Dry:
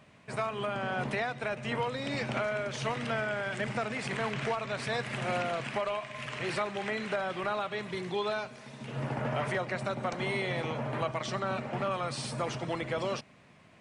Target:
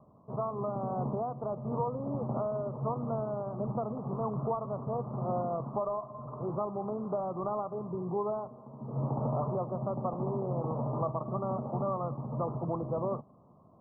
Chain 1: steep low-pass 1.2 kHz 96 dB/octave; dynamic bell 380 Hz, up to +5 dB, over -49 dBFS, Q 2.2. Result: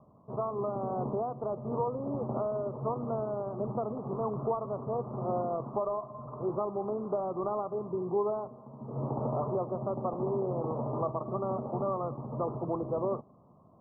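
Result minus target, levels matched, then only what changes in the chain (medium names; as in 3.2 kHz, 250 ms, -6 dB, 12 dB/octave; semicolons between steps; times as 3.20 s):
125 Hz band -3.5 dB
change: dynamic bell 160 Hz, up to +5 dB, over -49 dBFS, Q 2.2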